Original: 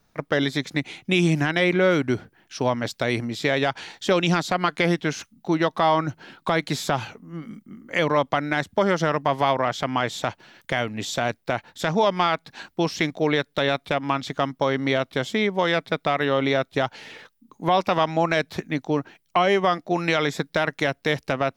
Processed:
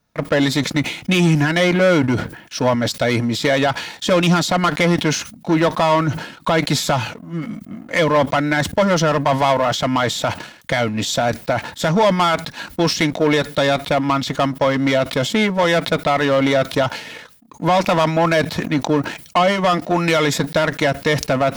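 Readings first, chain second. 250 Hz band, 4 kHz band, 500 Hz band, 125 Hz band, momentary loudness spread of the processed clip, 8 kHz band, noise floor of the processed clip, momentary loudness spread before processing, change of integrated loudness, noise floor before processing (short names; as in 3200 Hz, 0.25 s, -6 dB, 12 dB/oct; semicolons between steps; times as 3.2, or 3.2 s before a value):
+6.5 dB, +6.5 dB, +5.5 dB, +7.5 dB, 8 LU, +10.5 dB, -43 dBFS, 9 LU, +5.5 dB, -67 dBFS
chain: sample leveller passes 2; notch comb 390 Hz; sustainer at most 95 dB/s; gain +2 dB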